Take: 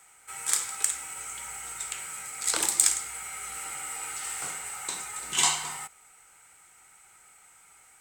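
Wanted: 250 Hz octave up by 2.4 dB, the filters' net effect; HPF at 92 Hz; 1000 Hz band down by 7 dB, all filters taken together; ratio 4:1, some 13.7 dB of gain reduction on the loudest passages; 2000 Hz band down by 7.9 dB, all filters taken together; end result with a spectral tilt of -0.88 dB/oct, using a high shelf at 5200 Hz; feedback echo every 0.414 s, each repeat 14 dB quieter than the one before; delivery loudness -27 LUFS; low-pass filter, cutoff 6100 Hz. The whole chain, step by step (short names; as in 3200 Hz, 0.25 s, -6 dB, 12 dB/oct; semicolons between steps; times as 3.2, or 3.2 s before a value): HPF 92 Hz; LPF 6100 Hz; bell 250 Hz +4.5 dB; bell 1000 Hz -7 dB; bell 2000 Hz -6.5 dB; high shelf 5200 Hz -8.5 dB; compressor 4:1, threshold -45 dBFS; feedback echo 0.414 s, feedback 20%, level -14 dB; gain +20 dB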